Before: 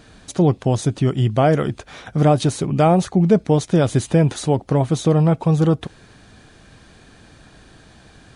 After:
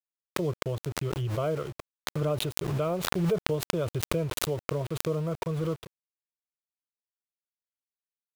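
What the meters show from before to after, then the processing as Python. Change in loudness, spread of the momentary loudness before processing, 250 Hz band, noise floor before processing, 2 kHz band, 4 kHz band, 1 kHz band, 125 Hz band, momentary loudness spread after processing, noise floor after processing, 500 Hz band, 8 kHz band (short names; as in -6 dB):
-12.5 dB, 6 LU, -15.5 dB, -49 dBFS, -5.5 dB, -4.0 dB, -14.0 dB, -14.0 dB, 6 LU, under -85 dBFS, -11.0 dB, -6.5 dB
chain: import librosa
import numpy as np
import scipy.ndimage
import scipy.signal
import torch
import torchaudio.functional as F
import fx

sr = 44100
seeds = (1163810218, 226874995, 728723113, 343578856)

y = fx.high_shelf(x, sr, hz=4200.0, db=-9.0)
y = fx.fixed_phaser(y, sr, hz=1200.0, stages=8)
y = np.where(np.abs(y) >= 10.0 ** (-31.0 / 20.0), y, 0.0)
y = fx.pre_swell(y, sr, db_per_s=29.0)
y = y * 10.0 ** (-10.5 / 20.0)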